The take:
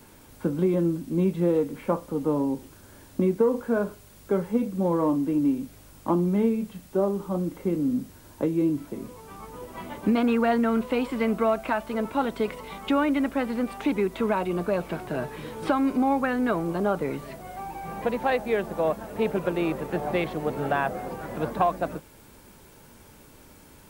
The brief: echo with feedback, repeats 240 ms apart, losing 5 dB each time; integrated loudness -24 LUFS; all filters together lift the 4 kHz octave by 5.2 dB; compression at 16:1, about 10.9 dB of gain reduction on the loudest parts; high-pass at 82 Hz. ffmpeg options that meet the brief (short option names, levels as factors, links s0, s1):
-af "highpass=82,equalizer=f=4000:t=o:g=7,acompressor=threshold=0.0398:ratio=16,aecho=1:1:240|480|720|960|1200|1440|1680:0.562|0.315|0.176|0.0988|0.0553|0.031|0.0173,volume=2.66"